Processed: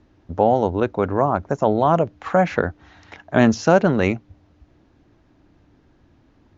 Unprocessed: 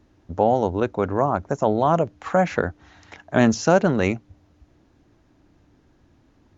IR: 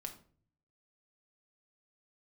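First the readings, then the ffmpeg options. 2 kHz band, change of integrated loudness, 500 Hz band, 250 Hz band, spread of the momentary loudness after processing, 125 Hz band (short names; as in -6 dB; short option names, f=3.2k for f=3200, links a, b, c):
+2.0 dB, +2.0 dB, +2.0 dB, +2.0 dB, 7 LU, +2.0 dB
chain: -af "lowpass=5.2k,volume=2dB"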